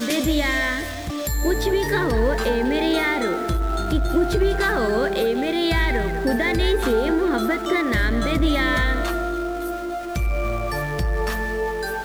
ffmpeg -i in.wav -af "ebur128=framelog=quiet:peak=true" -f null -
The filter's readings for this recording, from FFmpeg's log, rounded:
Integrated loudness:
  I:         -21.9 LUFS
  Threshold: -31.9 LUFS
Loudness range:
  LRA:         2.7 LU
  Threshold: -41.6 LUFS
  LRA low:   -23.4 LUFS
  LRA high:  -20.8 LUFS
True peak:
  Peak:      -11.1 dBFS